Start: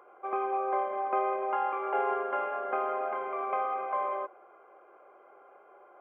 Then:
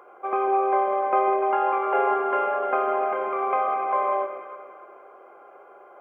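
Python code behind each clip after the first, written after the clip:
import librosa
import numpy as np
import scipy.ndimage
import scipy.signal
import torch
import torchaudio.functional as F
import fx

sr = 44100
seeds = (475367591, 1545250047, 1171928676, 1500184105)

y = fx.echo_alternate(x, sr, ms=148, hz=810.0, feedback_pct=62, wet_db=-5)
y = y * 10.0 ** (6.5 / 20.0)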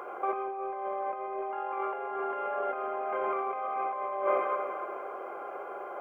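y = fx.over_compress(x, sr, threshold_db=-33.0, ratio=-1.0)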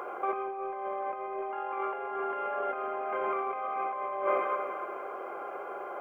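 y = fx.dynamic_eq(x, sr, hz=640.0, q=0.73, threshold_db=-40.0, ratio=4.0, max_db=-4)
y = y * 10.0 ** (2.5 / 20.0)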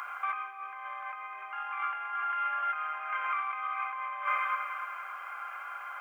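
y = scipy.signal.sosfilt(scipy.signal.butter(4, 1300.0, 'highpass', fs=sr, output='sos'), x)
y = y * 10.0 ** (7.5 / 20.0)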